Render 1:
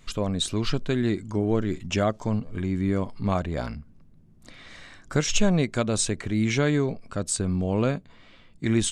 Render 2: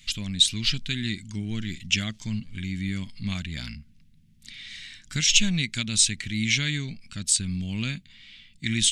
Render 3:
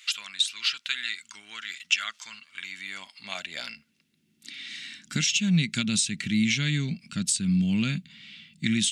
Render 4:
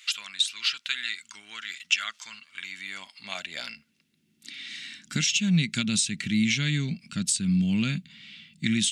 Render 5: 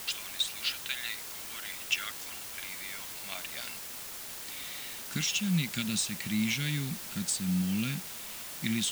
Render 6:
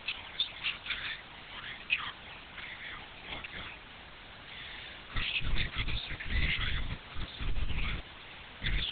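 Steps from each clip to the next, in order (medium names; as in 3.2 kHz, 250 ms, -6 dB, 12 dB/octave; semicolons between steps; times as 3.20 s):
FFT filter 220 Hz 0 dB, 490 Hz -22 dB, 1.2 kHz -12 dB, 2 kHz +8 dB, 3.3 kHz +14 dB, 7.5 kHz +9 dB; trim -3.5 dB
compression 6:1, threshold -24 dBFS, peak gain reduction 11 dB; high-pass sweep 1.2 kHz -> 170 Hz, 2.39–5.46 s; small resonant body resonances 1.4/2.7 kHz, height 8 dB; trim +1.5 dB
no audible change
word length cut 6-bit, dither triangular; trim -6 dB
frequency shift -160 Hz; LPC vocoder at 8 kHz whisper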